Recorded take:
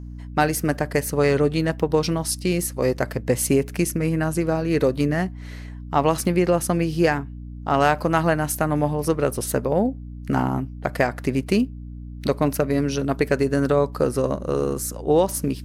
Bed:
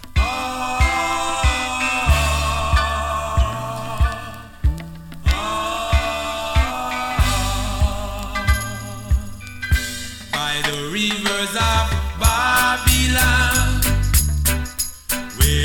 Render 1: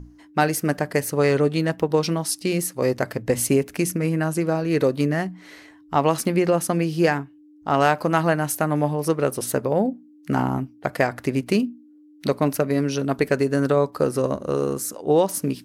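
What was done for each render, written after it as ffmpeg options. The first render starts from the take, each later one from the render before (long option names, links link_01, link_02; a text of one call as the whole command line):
ffmpeg -i in.wav -af "bandreject=frequency=60:width_type=h:width=6,bandreject=frequency=120:width_type=h:width=6,bandreject=frequency=180:width_type=h:width=6,bandreject=frequency=240:width_type=h:width=6" out.wav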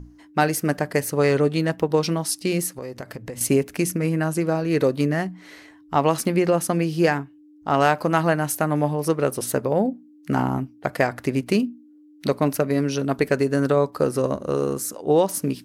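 ffmpeg -i in.wav -filter_complex "[0:a]asettb=1/sr,asplit=3[link_01][link_02][link_03];[link_01]atrim=end=2.784[link_04];[link_02]atrim=start=2.78:end=3.41,asetpts=PTS-STARTPTS,afade=type=in:duration=0.004:curve=qsin,afade=type=out:start_time=0.626:duration=0.004:curve=qsin,acompressor=threshold=-30dB:ratio=6:attack=3.2:release=140:knee=1:detection=peak[link_05];[link_03]atrim=start=3.406[link_06];[link_04][link_05]acrossfade=duration=0.004:curve1=hsin:curve2=qsin[link_07];[link_07][link_06]acrossfade=duration=0.004:curve1=qsin:curve2=hsin" out.wav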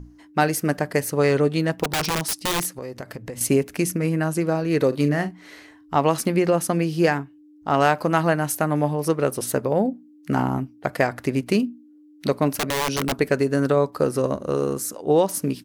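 ffmpeg -i in.wav -filter_complex "[0:a]asplit=3[link_01][link_02][link_03];[link_01]afade=type=out:start_time=1.83:duration=0.02[link_04];[link_02]aeval=exprs='(mod(7.5*val(0)+1,2)-1)/7.5':channel_layout=same,afade=type=in:start_time=1.83:duration=0.02,afade=type=out:start_time=2.64:duration=0.02[link_05];[link_03]afade=type=in:start_time=2.64:duration=0.02[link_06];[link_04][link_05][link_06]amix=inputs=3:normalize=0,asplit=3[link_07][link_08][link_09];[link_07]afade=type=out:start_time=4.91:duration=0.02[link_10];[link_08]asplit=2[link_11][link_12];[link_12]adelay=41,volume=-11dB[link_13];[link_11][link_13]amix=inputs=2:normalize=0,afade=type=in:start_time=4.91:duration=0.02,afade=type=out:start_time=5.94:duration=0.02[link_14];[link_09]afade=type=in:start_time=5.94:duration=0.02[link_15];[link_10][link_14][link_15]amix=inputs=3:normalize=0,asettb=1/sr,asplit=3[link_16][link_17][link_18];[link_16]atrim=end=12.504[link_19];[link_17]atrim=start=12.5:end=13.12,asetpts=PTS-STARTPTS,afade=type=in:duration=0.004:curve=qsin,afade=type=out:start_time=0.616:duration=0.004:curve=qsin,aeval=exprs='(mod(7.08*val(0)+1,2)-1)/7.08':channel_layout=same[link_20];[link_18]atrim=start=13.116[link_21];[link_19][link_20]acrossfade=duration=0.004:curve1=hsin:curve2=qsin[link_22];[link_22][link_21]acrossfade=duration=0.004:curve1=qsin:curve2=hsin" out.wav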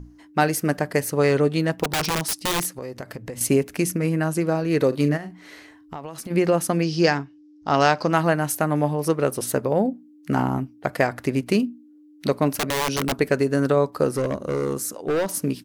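ffmpeg -i in.wav -filter_complex "[0:a]asplit=3[link_01][link_02][link_03];[link_01]afade=type=out:start_time=5.16:duration=0.02[link_04];[link_02]acompressor=threshold=-30dB:ratio=12:attack=3.2:release=140:knee=1:detection=peak,afade=type=in:start_time=5.16:duration=0.02,afade=type=out:start_time=6.3:duration=0.02[link_05];[link_03]afade=type=in:start_time=6.3:duration=0.02[link_06];[link_04][link_05][link_06]amix=inputs=3:normalize=0,asettb=1/sr,asplit=3[link_07][link_08][link_09];[link_07]atrim=end=6.824[link_10];[link_08]atrim=start=6.82:end=8.13,asetpts=PTS-STARTPTS,afade=type=in:duration=0.004:curve=qsin,afade=type=out:start_time=1.306:duration=0.004:curve=qsin,lowpass=frequency=5400:width_type=q:width=3.6[link_11];[link_09]atrim=start=8.126[link_12];[link_10][link_11]acrossfade=duration=0.004:curve1=hsin:curve2=qsin[link_13];[link_13][link_12]acrossfade=duration=0.004:curve1=qsin:curve2=hsin,asettb=1/sr,asplit=3[link_14][link_15][link_16];[link_14]atrim=end=14.144[link_17];[link_15]atrim=start=14.14:end=15.29,asetpts=PTS-STARTPTS,afade=type=in:duration=0.004:curve=qsin,afade=type=out:start_time=1.146:duration=0.004:curve=qsin,asoftclip=type=hard:threshold=-19dB[link_18];[link_16]atrim=start=15.286[link_19];[link_17][link_18]acrossfade=duration=0.004:curve1=hsin:curve2=qsin[link_20];[link_20][link_19]acrossfade=duration=0.004:curve1=qsin:curve2=hsin" out.wav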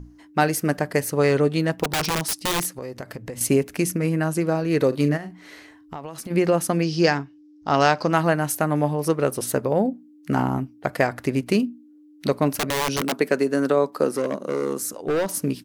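ffmpeg -i in.wav -filter_complex "[0:a]asettb=1/sr,asplit=3[link_01][link_02][link_03];[link_01]atrim=end=13.014[link_04];[link_02]atrim=start=13.01:end=14.82,asetpts=PTS-STARTPTS,afade=type=in:duration=0.004:curve=qsin,afade=type=out:start_time=1.806:duration=0.004:curve=qsin,highpass=frequency=180:width=0.5412,highpass=frequency=180:width=1.3066[link_05];[link_03]atrim=start=14.816[link_06];[link_04][link_05]acrossfade=duration=0.004:curve1=hsin:curve2=qsin[link_07];[link_07][link_06]acrossfade=duration=0.004:curve1=qsin:curve2=hsin" out.wav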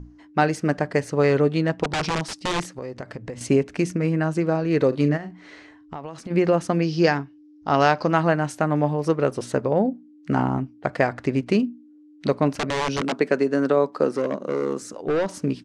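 ffmpeg -i in.wav -af "lowpass=frequency=8200:width=0.5412,lowpass=frequency=8200:width=1.3066,aemphasis=mode=reproduction:type=cd" out.wav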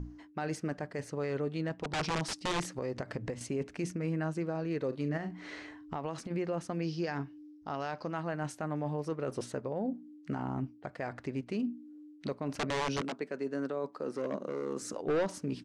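ffmpeg -i in.wav -af "areverse,acompressor=threshold=-27dB:ratio=6,areverse,alimiter=level_in=1.5dB:limit=-24dB:level=0:latency=1:release=247,volume=-1.5dB" out.wav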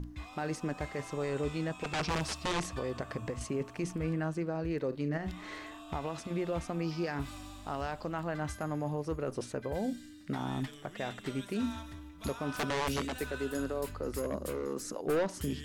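ffmpeg -i in.wav -i bed.wav -filter_complex "[1:a]volume=-27.5dB[link_01];[0:a][link_01]amix=inputs=2:normalize=0" out.wav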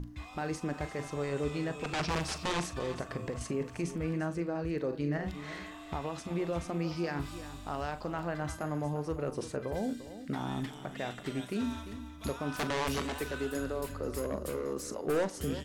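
ffmpeg -i in.wav -filter_complex "[0:a]asplit=2[link_01][link_02];[link_02]adelay=41,volume=-13dB[link_03];[link_01][link_03]amix=inputs=2:normalize=0,aecho=1:1:347:0.224" out.wav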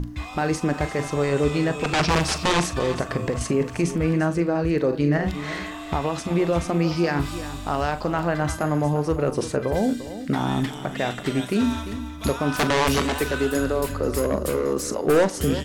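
ffmpeg -i in.wav -af "volume=12dB" out.wav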